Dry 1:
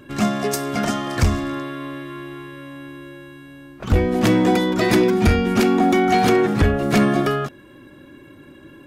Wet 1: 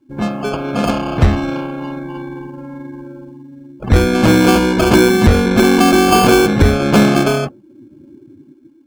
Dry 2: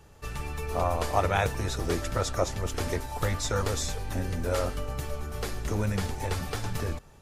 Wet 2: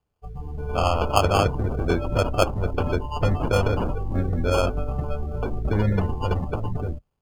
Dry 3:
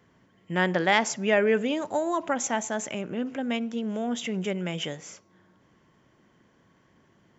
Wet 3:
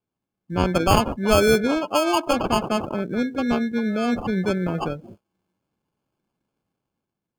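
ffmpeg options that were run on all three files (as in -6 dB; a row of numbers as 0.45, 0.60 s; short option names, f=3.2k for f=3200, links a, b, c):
-af "acrusher=samples=23:mix=1:aa=0.000001,dynaudnorm=f=130:g=9:m=7dB,afftdn=nr=24:nf=-29"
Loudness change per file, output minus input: +5.5, +6.0, +5.0 LU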